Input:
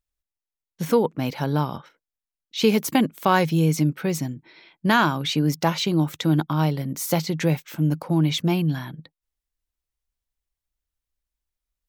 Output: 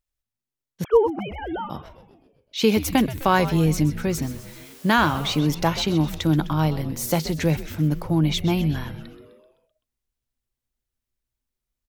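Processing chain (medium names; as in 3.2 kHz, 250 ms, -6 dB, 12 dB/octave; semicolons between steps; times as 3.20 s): 0.84–1.70 s: formants replaced by sine waves; frequency-shifting echo 128 ms, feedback 59%, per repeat -130 Hz, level -13.5 dB; 4.22–5.39 s: word length cut 8-bit, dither triangular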